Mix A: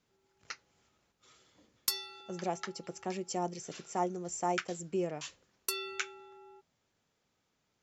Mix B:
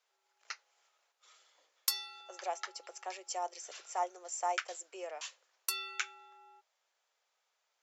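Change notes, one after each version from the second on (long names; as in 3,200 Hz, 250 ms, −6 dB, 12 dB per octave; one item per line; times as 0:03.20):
master: add inverse Chebyshev high-pass filter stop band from 170 Hz, stop band 60 dB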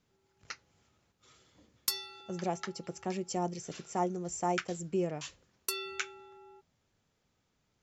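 speech: add low-shelf EQ 140 Hz +10.5 dB
master: remove inverse Chebyshev high-pass filter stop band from 170 Hz, stop band 60 dB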